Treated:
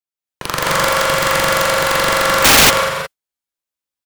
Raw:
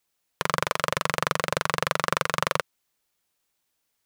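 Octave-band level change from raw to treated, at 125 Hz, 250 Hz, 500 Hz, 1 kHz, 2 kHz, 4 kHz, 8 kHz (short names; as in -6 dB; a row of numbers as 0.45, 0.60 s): +9.0, +12.5, +13.5, +11.5, +13.5, +16.5, +18.5 dB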